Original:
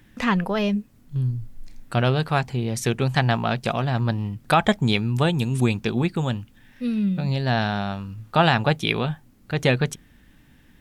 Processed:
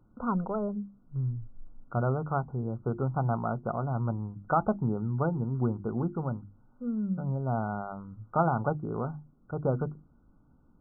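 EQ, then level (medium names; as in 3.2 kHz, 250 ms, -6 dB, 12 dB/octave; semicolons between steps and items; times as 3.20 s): brick-wall FIR low-pass 1.5 kHz; hum notches 50/100/150/200/250/300/350 Hz; -7.0 dB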